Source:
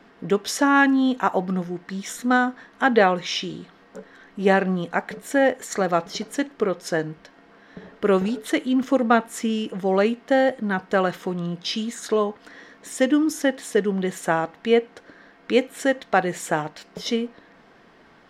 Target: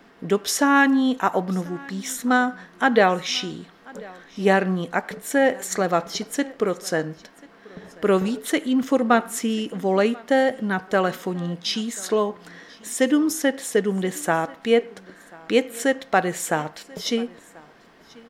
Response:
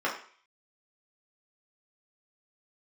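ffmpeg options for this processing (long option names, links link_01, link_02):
-filter_complex "[0:a]highshelf=frequency=8200:gain=10.5,aecho=1:1:1038:0.0668,asplit=2[link_01][link_02];[1:a]atrim=start_sample=2205,adelay=75[link_03];[link_02][link_03]afir=irnorm=-1:irlink=0,volume=-32.5dB[link_04];[link_01][link_04]amix=inputs=2:normalize=0"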